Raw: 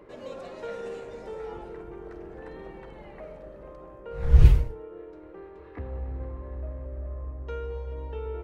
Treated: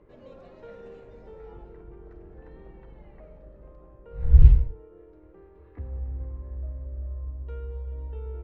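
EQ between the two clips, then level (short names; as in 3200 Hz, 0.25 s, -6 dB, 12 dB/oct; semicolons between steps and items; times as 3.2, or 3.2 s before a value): air absorption 120 m; low shelf 130 Hz +11 dB; low shelf 400 Hz +3.5 dB; -10.5 dB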